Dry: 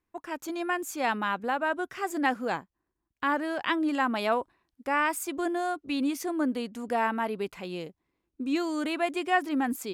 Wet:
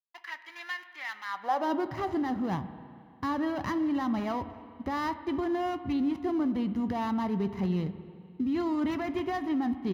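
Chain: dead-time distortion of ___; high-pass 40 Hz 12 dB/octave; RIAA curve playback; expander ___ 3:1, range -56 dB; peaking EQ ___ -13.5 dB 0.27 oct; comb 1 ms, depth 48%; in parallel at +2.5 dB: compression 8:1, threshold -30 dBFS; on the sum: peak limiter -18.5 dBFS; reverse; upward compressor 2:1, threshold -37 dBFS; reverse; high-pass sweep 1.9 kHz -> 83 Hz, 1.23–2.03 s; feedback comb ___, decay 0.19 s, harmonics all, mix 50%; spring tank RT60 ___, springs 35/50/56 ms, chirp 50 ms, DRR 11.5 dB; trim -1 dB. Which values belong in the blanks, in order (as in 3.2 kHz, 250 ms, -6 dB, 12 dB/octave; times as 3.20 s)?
0.14 ms, -53 dBFS, 8.1 kHz, 190 Hz, 2.3 s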